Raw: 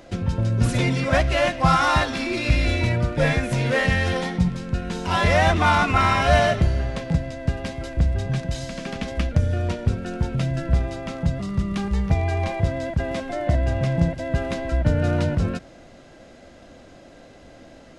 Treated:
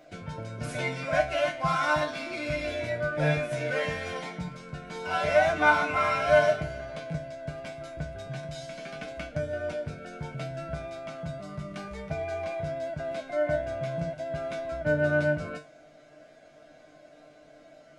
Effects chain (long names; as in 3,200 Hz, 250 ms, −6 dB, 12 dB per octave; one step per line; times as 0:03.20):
low-shelf EQ 85 Hz −12 dB
tuned comb filter 150 Hz, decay 0.27 s, harmonics all, mix 90%
hollow resonant body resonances 650/1,500/2,200 Hz, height 15 dB, ringing for 55 ms